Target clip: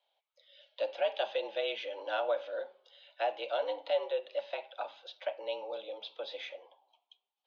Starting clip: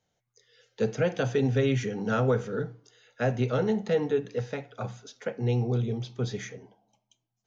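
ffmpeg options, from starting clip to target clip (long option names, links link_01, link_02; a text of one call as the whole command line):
ffmpeg -i in.wav -filter_complex "[0:a]tiltshelf=frequency=1200:gain=9,asplit=2[link_01][link_02];[link_02]acompressor=threshold=-27dB:ratio=6,volume=-1dB[link_03];[link_01][link_03]amix=inputs=2:normalize=0,highpass=frequency=510:width_type=q:width=0.5412,highpass=frequency=510:width_type=q:width=1.307,lowpass=frequency=3500:width_type=q:width=0.5176,lowpass=frequency=3500:width_type=q:width=0.7071,lowpass=frequency=3500:width_type=q:width=1.932,afreqshift=88,aexciter=amount=10.1:drive=4.3:freq=2700,volume=-8.5dB" out.wav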